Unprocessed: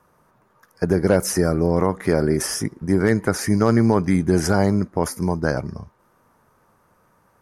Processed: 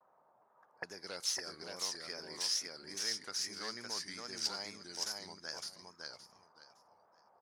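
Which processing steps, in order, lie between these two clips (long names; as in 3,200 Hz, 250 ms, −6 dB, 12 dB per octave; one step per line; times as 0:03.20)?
stylus tracing distortion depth 0.043 ms
noise gate with hold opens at −55 dBFS
envelope filter 720–4,700 Hz, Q 2.9, up, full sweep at −22.5 dBFS
on a send: repeating echo 564 ms, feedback 21%, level −3 dB
on the sum: pitch vibrato 2.4 Hz 78 cents
level −2 dB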